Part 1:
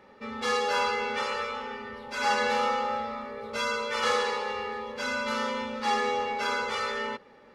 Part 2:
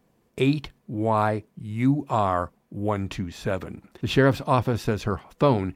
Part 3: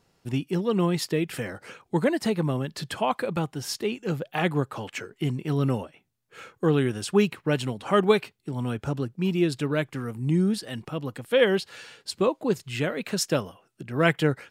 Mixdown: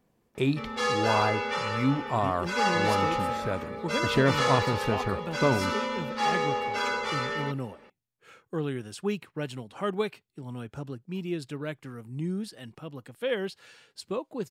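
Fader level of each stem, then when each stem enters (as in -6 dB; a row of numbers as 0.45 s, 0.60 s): 0.0 dB, -4.5 dB, -9.0 dB; 0.35 s, 0.00 s, 1.90 s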